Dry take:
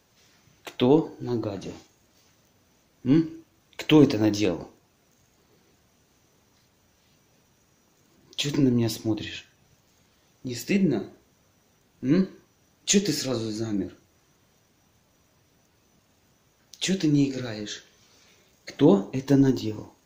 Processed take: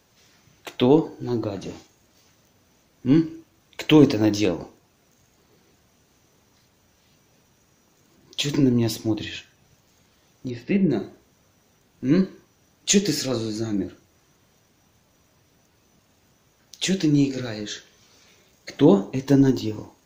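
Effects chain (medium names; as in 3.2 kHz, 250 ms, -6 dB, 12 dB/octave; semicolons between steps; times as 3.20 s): 10.50–10.90 s: distance through air 350 m; trim +2.5 dB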